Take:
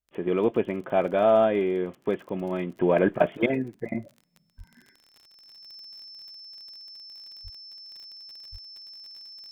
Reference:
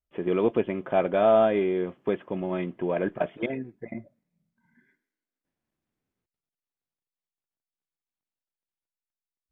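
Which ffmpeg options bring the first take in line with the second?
ffmpeg -i in.wav -filter_complex "[0:a]adeclick=threshold=4,bandreject=frequency=5300:width=30,asplit=3[link_01][link_02][link_03];[link_01]afade=type=out:start_time=4.57:duration=0.02[link_04];[link_02]highpass=frequency=140:width=0.5412,highpass=frequency=140:width=1.3066,afade=type=in:start_time=4.57:duration=0.02,afade=type=out:start_time=4.69:duration=0.02[link_05];[link_03]afade=type=in:start_time=4.69:duration=0.02[link_06];[link_04][link_05][link_06]amix=inputs=3:normalize=0,asplit=3[link_07][link_08][link_09];[link_07]afade=type=out:start_time=7.43:duration=0.02[link_10];[link_08]highpass=frequency=140:width=0.5412,highpass=frequency=140:width=1.3066,afade=type=in:start_time=7.43:duration=0.02,afade=type=out:start_time=7.55:duration=0.02[link_11];[link_09]afade=type=in:start_time=7.55:duration=0.02[link_12];[link_10][link_11][link_12]amix=inputs=3:normalize=0,asplit=3[link_13][link_14][link_15];[link_13]afade=type=out:start_time=8.51:duration=0.02[link_16];[link_14]highpass=frequency=140:width=0.5412,highpass=frequency=140:width=1.3066,afade=type=in:start_time=8.51:duration=0.02,afade=type=out:start_time=8.63:duration=0.02[link_17];[link_15]afade=type=in:start_time=8.63:duration=0.02[link_18];[link_16][link_17][link_18]amix=inputs=3:normalize=0,asetnsamples=nb_out_samples=441:pad=0,asendcmd='2.8 volume volume -6dB',volume=0dB" out.wav

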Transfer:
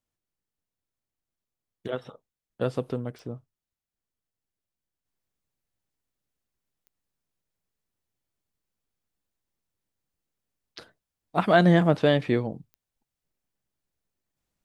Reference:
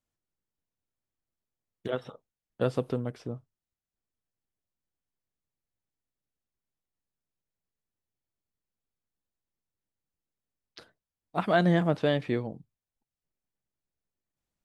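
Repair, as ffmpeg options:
ffmpeg -i in.wav -af "adeclick=threshold=4,asetnsamples=nb_out_samples=441:pad=0,asendcmd='5.05 volume volume -5dB',volume=0dB" out.wav

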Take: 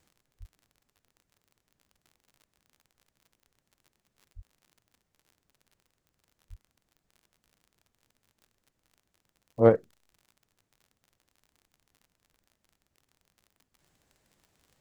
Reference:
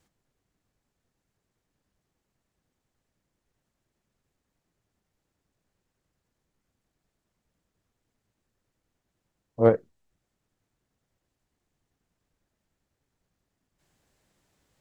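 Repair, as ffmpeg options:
ffmpeg -i in.wav -filter_complex "[0:a]adeclick=threshold=4,asplit=3[link_01][link_02][link_03];[link_01]afade=type=out:start_time=0.39:duration=0.02[link_04];[link_02]highpass=frequency=140:width=0.5412,highpass=frequency=140:width=1.3066,afade=type=in:start_time=0.39:duration=0.02,afade=type=out:start_time=0.51:duration=0.02[link_05];[link_03]afade=type=in:start_time=0.51:duration=0.02[link_06];[link_04][link_05][link_06]amix=inputs=3:normalize=0,asplit=3[link_07][link_08][link_09];[link_07]afade=type=out:start_time=4.35:duration=0.02[link_10];[link_08]highpass=frequency=140:width=0.5412,highpass=frequency=140:width=1.3066,afade=type=in:start_time=4.35:duration=0.02,afade=type=out:start_time=4.47:duration=0.02[link_11];[link_09]afade=type=in:start_time=4.47:duration=0.02[link_12];[link_10][link_11][link_12]amix=inputs=3:normalize=0,asplit=3[link_13][link_14][link_15];[link_13]afade=type=out:start_time=6.49:duration=0.02[link_16];[link_14]highpass=frequency=140:width=0.5412,highpass=frequency=140:width=1.3066,afade=type=in:start_time=6.49:duration=0.02,afade=type=out:start_time=6.61:duration=0.02[link_17];[link_15]afade=type=in:start_time=6.61:duration=0.02[link_18];[link_16][link_17][link_18]amix=inputs=3:normalize=0" out.wav

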